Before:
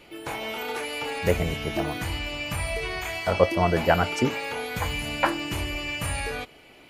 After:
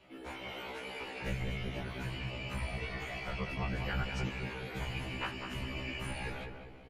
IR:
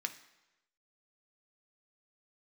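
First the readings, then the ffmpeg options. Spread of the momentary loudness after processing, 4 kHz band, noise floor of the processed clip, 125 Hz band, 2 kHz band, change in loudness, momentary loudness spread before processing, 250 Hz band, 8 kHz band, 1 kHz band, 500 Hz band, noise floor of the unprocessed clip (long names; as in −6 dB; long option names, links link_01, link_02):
6 LU, −11.0 dB, −49 dBFS, −8.0 dB, −10.5 dB, −12.0 dB, 9 LU, −11.5 dB, −17.0 dB, −15.0 dB, −17.5 dB, −51 dBFS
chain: -filter_complex "[0:a]afftfilt=real='hypot(re,im)*cos(2*PI*random(0))':imag='hypot(re,im)*sin(2*PI*random(1))':win_size=512:overlap=0.75,acrossover=split=190|1400|2700[link_01][link_02][link_03][link_04];[link_02]acompressor=threshold=-42dB:ratio=6[link_05];[link_01][link_05][link_03][link_04]amix=inputs=4:normalize=0,aemphasis=mode=reproduction:type=50kf,asplit=2[link_06][link_07];[link_07]adelay=198,lowpass=frequency=1200:poles=1,volume=-4dB,asplit=2[link_08][link_09];[link_09]adelay=198,lowpass=frequency=1200:poles=1,volume=0.53,asplit=2[link_10][link_11];[link_11]adelay=198,lowpass=frequency=1200:poles=1,volume=0.53,asplit=2[link_12][link_13];[link_13]adelay=198,lowpass=frequency=1200:poles=1,volume=0.53,asplit=2[link_14][link_15];[link_15]adelay=198,lowpass=frequency=1200:poles=1,volume=0.53,asplit=2[link_16][link_17];[link_17]adelay=198,lowpass=frequency=1200:poles=1,volume=0.53,asplit=2[link_18][link_19];[link_19]adelay=198,lowpass=frequency=1200:poles=1,volume=0.53[link_20];[link_06][link_08][link_10][link_12][link_14][link_16][link_18][link_20]amix=inputs=8:normalize=0,afftfilt=real='re*1.73*eq(mod(b,3),0)':imag='im*1.73*eq(mod(b,3),0)':win_size=2048:overlap=0.75"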